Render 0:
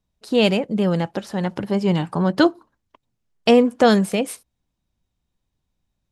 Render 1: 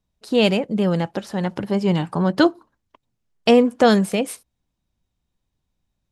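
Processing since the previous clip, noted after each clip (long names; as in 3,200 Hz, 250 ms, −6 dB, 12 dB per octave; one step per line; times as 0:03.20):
no processing that can be heard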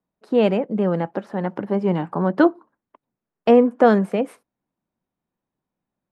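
three-way crossover with the lows and the highs turned down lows −22 dB, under 160 Hz, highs −20 dB, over 2,000 Hz
level +1 dB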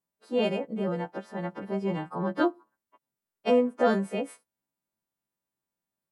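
every partial snapped to a pitch grid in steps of 2 semitones
level −8.5 dB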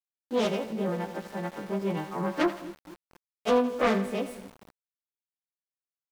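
phase distortion by the signal itself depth 0.34 ms
echo with a time of its own for lows and highs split 390 Hz, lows 231 ms, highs 83 ms, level −13 dB
centre clipping without the shift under −44 dBFS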